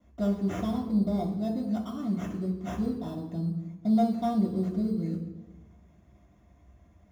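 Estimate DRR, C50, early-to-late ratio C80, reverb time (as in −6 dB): −12.0 dB, 7.0 dB, 9.5 dB, 1.1 s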